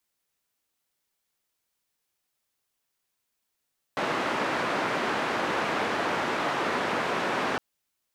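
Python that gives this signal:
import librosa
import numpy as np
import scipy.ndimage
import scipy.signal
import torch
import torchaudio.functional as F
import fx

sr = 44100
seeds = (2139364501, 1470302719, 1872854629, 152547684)

y = fx.band_noise(sr, seeds[0], length_s=3.61, low_hz=210.0, high_hz=1400.0, level_db=-28.0)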